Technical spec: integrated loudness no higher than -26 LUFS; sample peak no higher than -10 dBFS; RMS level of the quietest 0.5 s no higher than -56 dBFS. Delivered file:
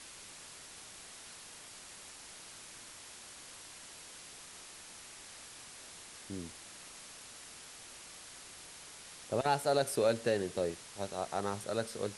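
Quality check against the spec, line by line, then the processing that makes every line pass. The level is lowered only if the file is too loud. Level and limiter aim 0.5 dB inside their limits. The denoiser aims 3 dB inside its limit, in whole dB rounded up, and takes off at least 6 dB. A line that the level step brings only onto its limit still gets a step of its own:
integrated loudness -39.5 LUFS: OK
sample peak -17.0 dBFS: OK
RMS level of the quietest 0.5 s -51 dBFS: fail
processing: denoiser 8 dB, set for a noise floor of -51 dBFS

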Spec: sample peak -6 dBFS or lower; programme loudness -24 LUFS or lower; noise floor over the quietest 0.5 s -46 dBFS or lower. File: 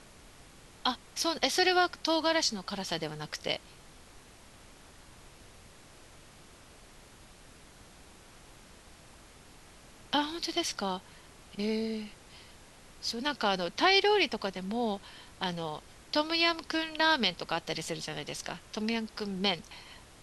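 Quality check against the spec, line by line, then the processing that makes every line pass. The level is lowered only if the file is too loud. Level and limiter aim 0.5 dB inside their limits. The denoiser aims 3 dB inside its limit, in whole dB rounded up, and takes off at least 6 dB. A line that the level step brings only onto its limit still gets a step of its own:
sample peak -11.5 dBFS: OK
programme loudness -30.5 LUFS: OK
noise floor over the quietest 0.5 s -54 dBFS: OK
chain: none

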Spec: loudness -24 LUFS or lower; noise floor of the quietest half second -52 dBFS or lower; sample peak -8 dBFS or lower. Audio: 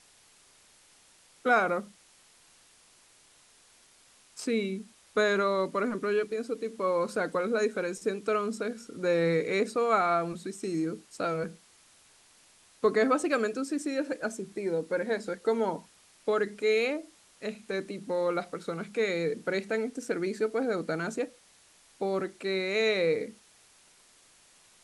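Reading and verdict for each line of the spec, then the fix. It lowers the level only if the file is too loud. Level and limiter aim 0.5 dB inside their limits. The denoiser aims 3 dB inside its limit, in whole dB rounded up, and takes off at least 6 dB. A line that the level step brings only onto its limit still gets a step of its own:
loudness -30.0 LUFS: OK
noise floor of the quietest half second -60 dBFS: OK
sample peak -11.5 dBFS: OK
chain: none

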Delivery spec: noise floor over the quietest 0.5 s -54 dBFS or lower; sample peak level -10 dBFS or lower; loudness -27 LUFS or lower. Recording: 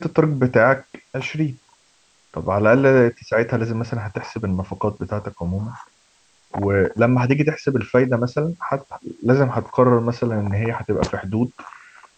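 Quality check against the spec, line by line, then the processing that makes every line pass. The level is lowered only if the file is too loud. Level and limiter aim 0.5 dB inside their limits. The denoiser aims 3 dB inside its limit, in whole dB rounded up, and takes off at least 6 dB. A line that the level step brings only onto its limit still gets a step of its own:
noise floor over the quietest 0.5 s -59 dBFS: OK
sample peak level -2.5 dBFS: fail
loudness -20.5 LUFS: fail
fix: gain -7 dB; limiter -10.5 dBFS

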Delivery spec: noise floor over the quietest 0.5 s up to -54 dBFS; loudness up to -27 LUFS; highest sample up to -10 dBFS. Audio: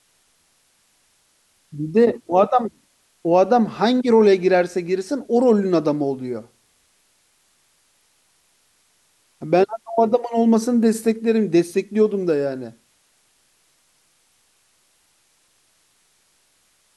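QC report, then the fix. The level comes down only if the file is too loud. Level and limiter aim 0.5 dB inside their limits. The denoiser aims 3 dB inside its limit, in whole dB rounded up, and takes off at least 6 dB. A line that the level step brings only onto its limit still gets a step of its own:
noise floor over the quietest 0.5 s -62 dBFS: OK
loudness -19.0 LUFS: fail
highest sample -4.0 dBFS: fail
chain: gain -8.5 dB

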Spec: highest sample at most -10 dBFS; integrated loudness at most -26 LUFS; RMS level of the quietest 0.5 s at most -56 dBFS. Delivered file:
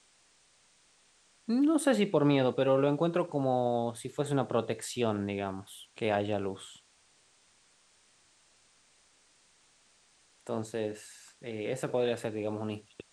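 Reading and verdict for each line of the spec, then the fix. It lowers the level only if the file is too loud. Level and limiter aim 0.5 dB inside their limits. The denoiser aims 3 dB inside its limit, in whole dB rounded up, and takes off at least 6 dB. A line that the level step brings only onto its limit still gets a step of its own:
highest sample -13.0 dBFS: OK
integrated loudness -31.0 LUFS: OK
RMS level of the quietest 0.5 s -66 dBFS: OK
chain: none

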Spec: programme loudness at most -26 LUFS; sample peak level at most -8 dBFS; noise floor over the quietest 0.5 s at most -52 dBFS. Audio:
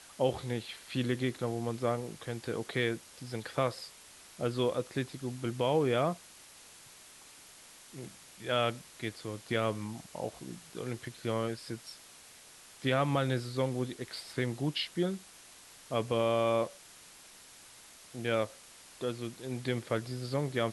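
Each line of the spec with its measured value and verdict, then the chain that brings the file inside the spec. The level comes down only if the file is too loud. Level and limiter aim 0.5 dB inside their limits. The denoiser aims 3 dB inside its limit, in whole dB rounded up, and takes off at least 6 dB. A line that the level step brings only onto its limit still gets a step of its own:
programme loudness -34.0 LUFS: OK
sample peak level -15.5 dBFS: OK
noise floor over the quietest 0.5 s -55 dBFS: OK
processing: none

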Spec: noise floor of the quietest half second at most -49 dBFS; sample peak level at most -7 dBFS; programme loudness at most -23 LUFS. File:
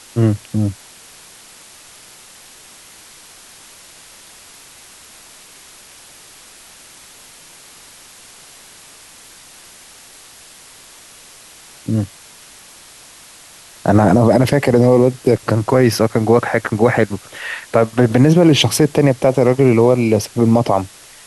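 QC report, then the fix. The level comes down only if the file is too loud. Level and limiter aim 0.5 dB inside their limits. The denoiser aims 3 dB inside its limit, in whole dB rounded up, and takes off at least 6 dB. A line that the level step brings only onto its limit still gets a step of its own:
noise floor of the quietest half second -42 dBFS: fail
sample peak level -2.0 dBFS: fail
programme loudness -14.5 LUFS: fail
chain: gain -9 dB

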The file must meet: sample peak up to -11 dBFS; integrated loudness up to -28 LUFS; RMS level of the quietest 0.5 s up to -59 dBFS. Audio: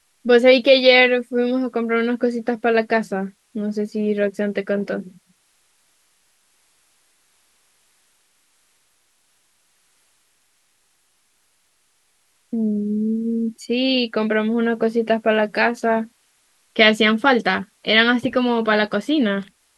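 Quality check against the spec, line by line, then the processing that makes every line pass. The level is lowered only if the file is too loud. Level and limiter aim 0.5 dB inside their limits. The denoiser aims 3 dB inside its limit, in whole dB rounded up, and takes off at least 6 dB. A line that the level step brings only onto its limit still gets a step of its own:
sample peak -2.5 dBFS: fail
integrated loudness -18.5 LUFS: fail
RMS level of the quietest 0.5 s -64 dBFS: OK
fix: gain -10 dB

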